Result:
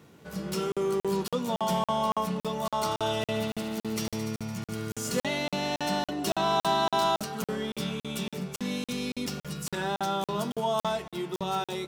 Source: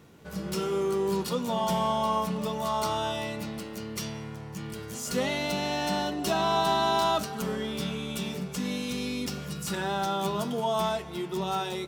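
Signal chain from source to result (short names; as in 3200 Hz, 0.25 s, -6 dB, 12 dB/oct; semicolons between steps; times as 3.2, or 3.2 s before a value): HPF 87 Hz; 2.84–5.23 multi-head echo 73 ms, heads first and second, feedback 74%, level -10 dB; crackling interface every 0.28 s, samples 2048, zero, from 0.72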